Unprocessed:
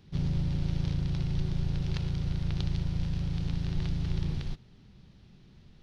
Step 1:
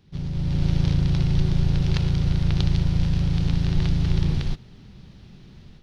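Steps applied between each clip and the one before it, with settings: AGC gain up to 10.5 dB; gain -1 dB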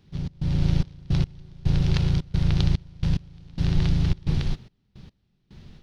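step gate "xx.xxx..x...xx" 109 bpm -24 dB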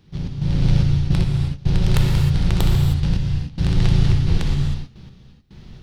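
tracing distortion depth 0.11 ms; non-linear reverb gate 0.34 s flat, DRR 1 dB; gain +3.5 dB

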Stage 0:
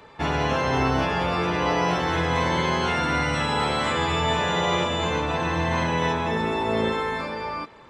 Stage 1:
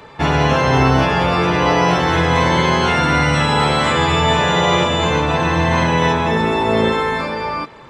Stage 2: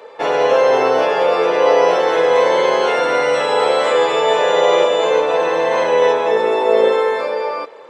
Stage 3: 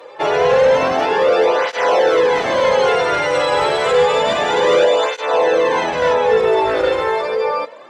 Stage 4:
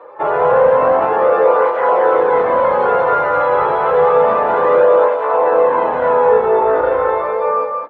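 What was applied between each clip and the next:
bell 140 Hz +7 dB 0.22 oct; gain +8 dB
resonant high-pass 490 Hz, resonance Q 4.9; gain -4 dB
in parallel at -9 dB: sine folder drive 10 dB, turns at -1 dBFS; on the sum: tape flanging out of phase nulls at 0.29 Hz, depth 4.7 ms; gain -3.5 dB
synth low-pass 1200 Hz, resonance Q 2; on a send: loudspeakers at several distances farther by 11 m -11 dB, 61 m -10 dB, 72 m -6 dB; on the sum: gain -2.5 dB

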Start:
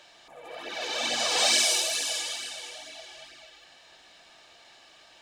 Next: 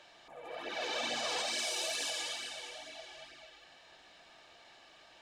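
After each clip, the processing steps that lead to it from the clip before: high shelf 4000 Hz -8 dB; limiter -24.5 dBFS, peak gain reduction 10.5 dB; gain -2 dB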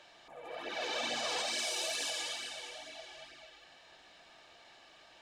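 nothing audible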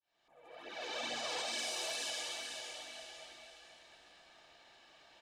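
opening faded in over 1.03 s; feedback echo 0.503 s, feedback 36%, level -8 dB; gain -4 dB

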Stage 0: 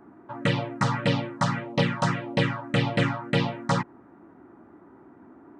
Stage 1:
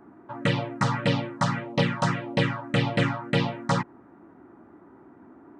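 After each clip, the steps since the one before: nothing audible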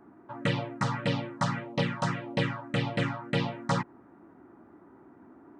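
vocal rider; gain -4.5 dB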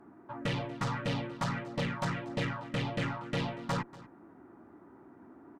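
tube stage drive 27 dB, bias 0.3; echo 0.238 s -19.5 dB

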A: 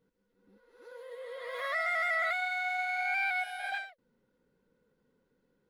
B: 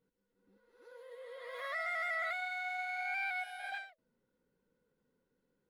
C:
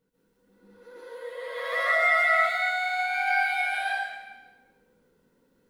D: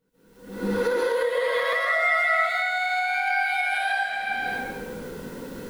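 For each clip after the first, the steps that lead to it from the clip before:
de-hum 214.1 Hz, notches 3; gain -6 dB
plate-style reverb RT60 1.2 s, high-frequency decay 0.9×, pre-delay 0.12 s, DRR -8 dB; gain +5 dB
recorder AGC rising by 48 dB/s

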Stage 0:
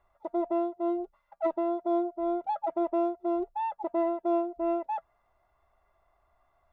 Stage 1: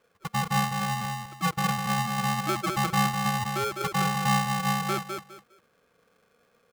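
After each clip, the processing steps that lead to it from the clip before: on a send: feedback echo 0.204 s, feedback 24%, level -4.5 dB; on the sum: polarity switched at an audio rate 480 Hz; gain +1.5 dB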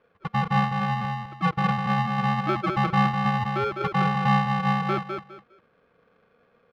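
air absorption 340 m; gain +4.5 dB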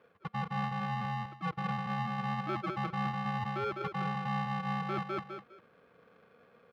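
HPF 81 Hz; reverse; compressor 4:1, threshold -35 dBFS, peak gain reduction 15.5 dB; reverse; gain +1 dB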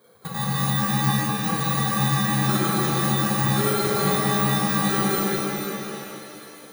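FFT order left unsorted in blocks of 16 samples; delay with a stepping band-pass 0.363 s, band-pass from 480 Hz, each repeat 1.4 oct, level -8 dB; shimmer reverb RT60 2.9 s, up +7 st, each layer -8 dB, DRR -6.5 dB; gain +5 dB

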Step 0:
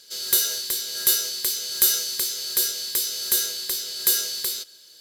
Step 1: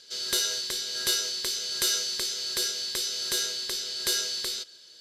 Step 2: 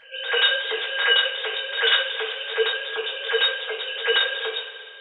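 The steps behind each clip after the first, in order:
LPF 6000 Hz 12 dB/oct
sine-wave speech; reverse echo 84 ms -18 dB; two-slope reverb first 0.32 s, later 3 s, from -18 dB, DRR -4.5 dB

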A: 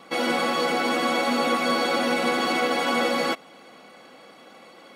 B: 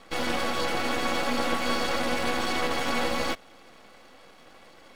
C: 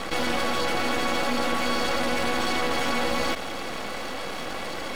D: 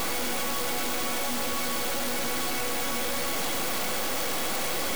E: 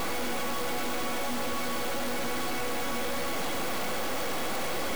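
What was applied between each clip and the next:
half-wave rectifier
fast leveller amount 70%
infinite clipping
high shelf 3200 Hz -8 dB

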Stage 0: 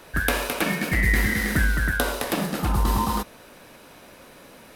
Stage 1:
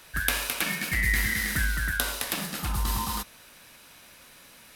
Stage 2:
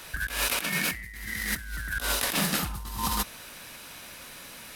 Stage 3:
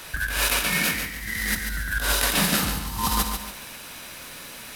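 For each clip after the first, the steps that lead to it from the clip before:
passive tone stack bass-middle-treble 5-5-5; gain +7.5 dB
negative-ratio compressor -32 dBFS, ratio -0.5; gain +2.5 dB
reverb RT60 0.95 s, pre-delay 43 ms, DRR 10.5 dB; lo-fi delay 0.142 s, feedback 35%, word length 8-bit, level -6.5 dB; gain +4 dB

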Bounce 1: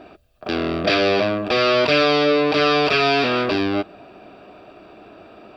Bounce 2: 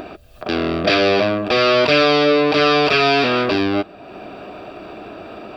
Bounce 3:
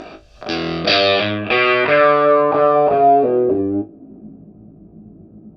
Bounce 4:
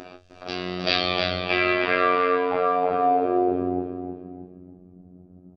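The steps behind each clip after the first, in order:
upward compressor, threshold -28 dBFS; gain +2.5 dB
on a send: flutter echo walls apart 3.2 m, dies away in 0.21 s; on the sum: low-pass sweep 5800 Hz -> 180 Hz, 0.65–4.45; gain -2.5 dB
downsampling 22050 Hz; feedback echo 0.311 s, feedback 38%, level -6.5 dB; robotiser 90.4 Hz; gain -5.5 dB

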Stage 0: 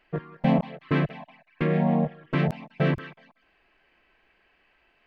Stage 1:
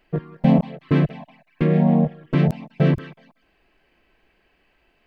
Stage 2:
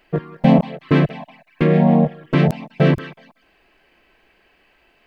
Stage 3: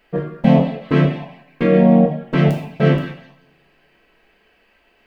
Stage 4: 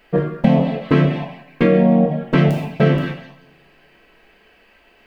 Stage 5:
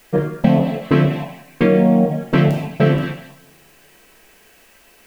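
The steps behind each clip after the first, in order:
bell 1600 Hz -9 dB 2.9 oct; gain +7.5 dB
low shelf 260 Hz -7 dB; gain +7 dB
two-slope reverb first 0.52 s, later 1.8 s, from -28 dB, DRR -0.5 dB; gain -3 dB
compressor 6:1, threshold -15 dBFS, peak gain reduction 8 dB; gain +5 dB
added noise white -54 dBFS

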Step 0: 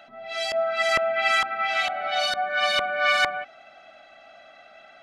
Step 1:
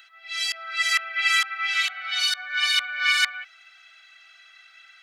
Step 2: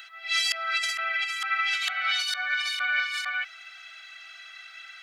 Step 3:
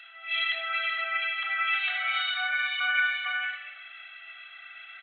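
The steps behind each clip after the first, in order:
HPF 1500 Hz 24 dB/oct; high shelf 4900 Hz +9.5 dB; gain +1 dB
negative-ratio compressor -29 dBFS, ratio -1; gain +1.5 dB
reverb RT60 1.2 s, pre-delay 4 ms, DRR -3 dB; downsampling 8000 Hz; gain -4.5 dB

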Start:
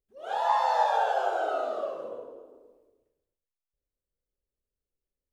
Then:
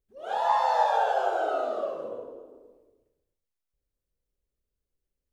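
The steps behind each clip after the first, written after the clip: low shelf 350 Hz +6.5 dB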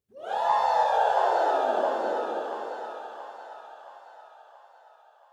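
high-pass sweep 110 Hz -> 2400 Hz, 1.24–3.93; split-band echo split 760 Hz, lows 0.263 s, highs 0.676 s, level -4 dB

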